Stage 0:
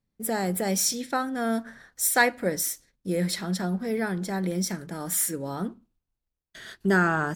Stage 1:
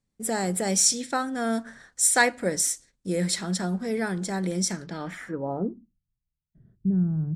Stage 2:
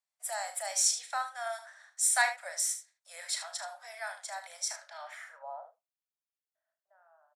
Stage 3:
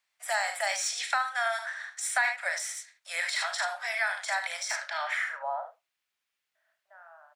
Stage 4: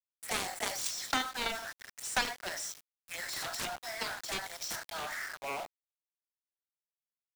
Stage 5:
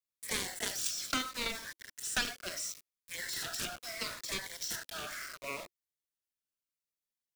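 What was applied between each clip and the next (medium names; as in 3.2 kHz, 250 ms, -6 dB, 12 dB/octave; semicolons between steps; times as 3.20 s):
low-pass sweep 8.2 kHz -> 150 Hz, 4.71–6.01 s
steep high-pass 600 Hz 96 dB/octave; on a send: early reflections 35 ms -9.5 dB, 76 ms -11 dB; on the sum: trim -6.5 dB
de-esser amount 95%; peaking EQ 2.2 kHz +14 dB 2.4 oct; compression 4:1, threshold -30 dBFS, peak gain reduction 12.5 dB; trim +4.5 dB
touch-sensitive phaser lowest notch 380 Hz, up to 2.7 kHz, full sweep at -30 dBFS; Chebyshev shaper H 7 -10 dB, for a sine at -16.5 dBFS; small samples zeroed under -39.5 dBFS
peaking EQ 810 Hz -12 dB 0.4 oct; Shepard-style phaser falling 0.73 Hz; trim +1 dB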